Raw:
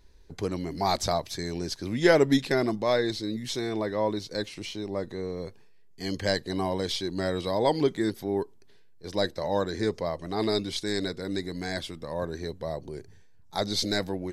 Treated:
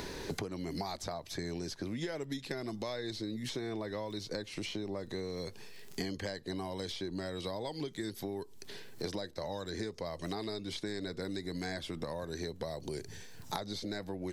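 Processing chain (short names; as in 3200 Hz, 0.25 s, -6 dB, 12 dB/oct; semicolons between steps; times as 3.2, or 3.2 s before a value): compressor 12:1, threshold -39 dBFS, peak gain reduction 24 dB; crackle 16/s -63 dBFS; three-band squash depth 100%; gain +3.5 dB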